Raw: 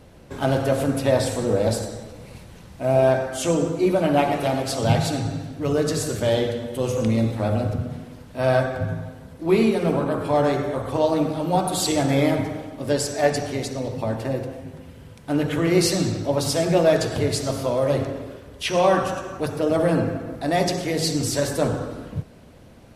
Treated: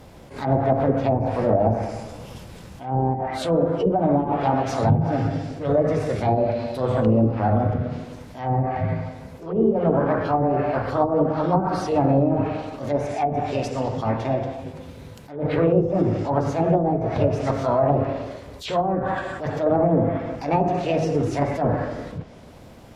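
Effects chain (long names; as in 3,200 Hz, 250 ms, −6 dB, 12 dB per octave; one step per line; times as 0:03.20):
formants moved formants +4 semitones
treble cut that deepens with the level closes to 400 Hz, closed at −14.5 dBFS
level that may rise only so fast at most 120 dB per second
level +3 dB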